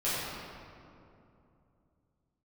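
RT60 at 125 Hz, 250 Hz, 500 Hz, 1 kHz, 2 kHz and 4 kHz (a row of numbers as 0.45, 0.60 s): 3.7, 3.4, 2.9, 2.5, 1.9, 1.4 s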